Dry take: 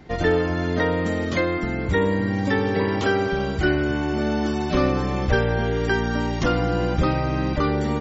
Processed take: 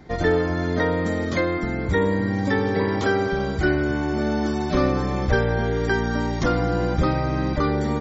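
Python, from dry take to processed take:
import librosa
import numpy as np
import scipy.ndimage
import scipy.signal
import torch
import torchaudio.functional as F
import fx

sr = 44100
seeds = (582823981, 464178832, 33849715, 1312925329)

y = fx.peak_eq(x, sr, hz=2800.0, db=-10.0, octaves=0.25)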